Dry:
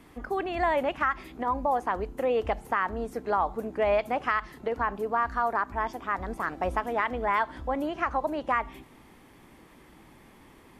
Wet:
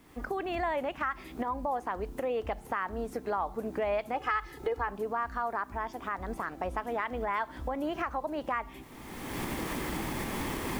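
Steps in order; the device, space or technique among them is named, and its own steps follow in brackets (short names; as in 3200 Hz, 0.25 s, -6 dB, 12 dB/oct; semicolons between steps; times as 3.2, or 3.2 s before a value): 4.14–4.88 comb 2.4 ms, depth 79%; cheap recorder with automatic gain (white noise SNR 37 dB; recorder AGC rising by 32 dB/s); gain -6 dB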